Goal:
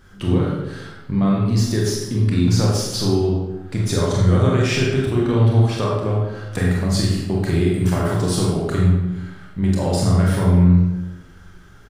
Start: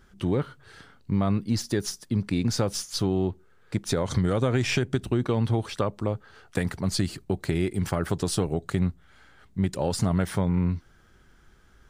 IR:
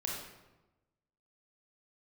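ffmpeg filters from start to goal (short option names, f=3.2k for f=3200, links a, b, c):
-filter_complex "[0:a]asplit=2[a][b];[b]adelay=45,volume=-6dB[c];[a][c]amix=inputs=2:normalize=0,asplit=2[d][e];[e]acompressor=threshold=-33dB:ratio=6,volume=2dB[f];[d][f]amix=inputs=2:normalize=0[g];[1:a]atrim=start_sample=2205[h];[g][h]afir=irnorm=-1:irlink=0"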